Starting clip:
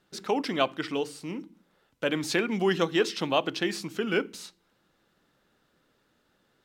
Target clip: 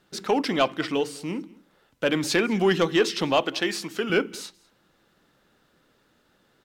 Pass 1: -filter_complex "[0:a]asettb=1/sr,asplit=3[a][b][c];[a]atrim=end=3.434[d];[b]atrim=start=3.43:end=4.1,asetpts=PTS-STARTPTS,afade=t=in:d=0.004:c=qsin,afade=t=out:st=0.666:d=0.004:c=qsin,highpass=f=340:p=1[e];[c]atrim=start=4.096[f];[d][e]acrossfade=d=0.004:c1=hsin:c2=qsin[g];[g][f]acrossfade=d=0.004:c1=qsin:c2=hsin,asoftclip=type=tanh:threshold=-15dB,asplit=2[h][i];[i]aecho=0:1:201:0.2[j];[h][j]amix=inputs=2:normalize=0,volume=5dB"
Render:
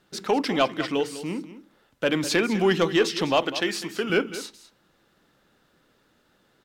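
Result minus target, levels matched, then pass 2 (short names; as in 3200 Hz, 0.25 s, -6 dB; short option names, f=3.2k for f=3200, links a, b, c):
echo-to-direct +10.5 dB
-filter_complex "[0:a]asettb=1/sr,asplit=3[a][b][c];[a]atrim=end=3.434[d];[b]atrim=start=3.43:end=4.1,asetpts=PTS-STARTPTS,afade=t=in:d=0.004:c=qsin,afade=t=out:st=0.666:d=0.004:c=qsin,highpass=f=340:p=1[e];[c]atrim=start=4.096[f];[d][e]acrossfade=d=0.004:c1=hsin:c2=qsin[g];[g][f]acrossfade=d=0.004:c1=qsin:c2=hsin,asoftclip=type=tanh:threshold=-15dB,asplit=2[h][i];[i]aecho=0:1:201:0.0596[j];[h][j]amix=inputs=2:normalize=0,volume=5dB"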